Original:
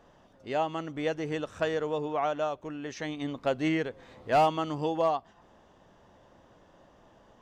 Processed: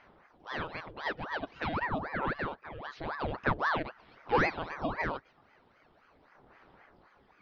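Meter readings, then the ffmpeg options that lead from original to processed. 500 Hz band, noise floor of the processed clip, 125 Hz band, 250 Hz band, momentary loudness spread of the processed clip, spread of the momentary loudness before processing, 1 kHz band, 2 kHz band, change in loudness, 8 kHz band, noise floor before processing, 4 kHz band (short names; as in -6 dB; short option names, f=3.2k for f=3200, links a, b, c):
-8.0 dB, -65 dBFS, -1.5 dB, -6.5 dB, 14 LU, 11 LU, -3.5 dB, +4.5 dB, -3.5 dB, under -10 dB, -60 dBFS, -4.0 dB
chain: -af "aresample=11025,aresample=44100,aphaser=in_gain=1:out_gain=1:delay=2.3:decay=0.51:speed=0.3:type=sinusoidal,aeval=exprs='val(0)*sin(2*PI*810*n/s+810*0.8/3.8*sin(2*PI*3.8*n/s))':c=same,volume=-3.5dB"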